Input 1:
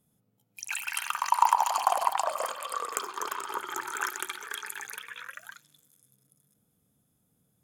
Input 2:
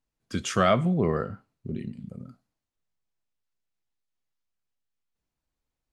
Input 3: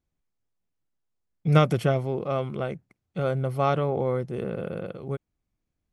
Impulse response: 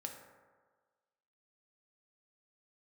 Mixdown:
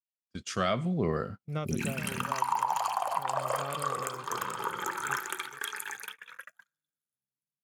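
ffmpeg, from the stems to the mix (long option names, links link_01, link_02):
-filter_complex "[0:a]bandreject=frequency=89.77:width_type=h:width=4,bandreject=frequency=179.54:width_type=h:width=4,bandreject=frequency=269.31:width_type=h:width=4,bandreject=frequency=359.08:width_type=h:width=4,bandreject=frequency=448.85:width_type=h:width=4,bandreject=frequency=538.62:width_type=h:width=4,bandreject=frequency=628.39:width_type=h:width=4,bandreject=frequency=718.16:width_type=h:width=4,bandreject=frequency=807.93:width_type=h:width=4,bandreject=frequency=897.7:width_type=h:width=4,bandreject=frequency=987.47:width_type=h:width=4,bandreject=frequency=1077.24:width_type=h:width=4,bandreject=frequency=1167.01:width_type=h:width=4,bandreject=frequency=1256.78:width_type=h:width=4,bandreject=frequency=1346.55:width_type=h:width=4,bandreject=frequency=1436.32:width_type=h:width=4,bandreject=frequency=1526.09:width_type=h:width=4,bandreject=frequency=1615.86:width_type=h:width=4,bandreject=frequency=1705.63:width_type=h:width=4,bandreject=frequency=1795.4:width_type=h:width=4,bandreject=frequency=1885.17:width_type=h:width=4,bandreject=frequency=1974.94:width_type=h:width=4,bandreject=frequency=2064.71:width_type=h:width=4,bandreject=frequency=2154.48:width_type=h:width=4,bandreject=frequency=2244.25:width_type=h:width=4,bandreject=frequency=2334.02:width_type=h:width=4,bandreject=frequency=2423.79:width_type=h:width=4,bandreject=frequency=2513.56:width_type=h:width=4,bandreject=frequency=2603.33:width_type=h:width=4,bandreject=frequency=2693.1:width_type=h:width=4,adynamicequalizer=threshold=0.00891:dfrequency=2900:dqfactor=0.7:tfrequency=2900:tqfactor=0.7:attack=5:release=100:ratio=0.375:range=2:mode=cutabove:tftype=highshelf,adelay=1100,volume=-0.5dB,asplit=2[link_01][link_02];[link_02]volume=-7.5dB[link_03];[1:a]equalizer=frequency=4700:width_type=o:width=0.73:gain=5,dynaudnorm=framelen=120:gausssize=11:maxgain=13dB,adynamicequalizer=threshold=0.0251:dfrequency=1900:dqfactor=0.7:tfrequency=1900:tqfactor=0.7:attack=5:release=100:ratio=0.375:range=2:mode=boostabove:tftype=highshelf,volume=-11dB,asplit=2[link_04][link_05];[2:a]volume=-16dB,asplit=2[link_06][link_07];[link_07]volume=-11.5dB[link_08];[link_05]apad=whole_len=385399[link_09];[link_01][link_09]sidechaincompress=threshold=-35dB:ratio=8:attack=16:release=961[link_10];[3:a]atrim=start_sample=2205[link_11];[link_03][link_11]afir=irnorm=-1:irlink=0[link_12];[link_08]aecho=0:1:428:1[link_13];[link_10][link_04][link_06][link_12][link_13]amix=inputs=5:normalize=0,agate=range=-34dB:threshold=-39dB:ratio=16:detection=peak,alimiter=limit=-15.5dB:level=0:latency=1:release=370"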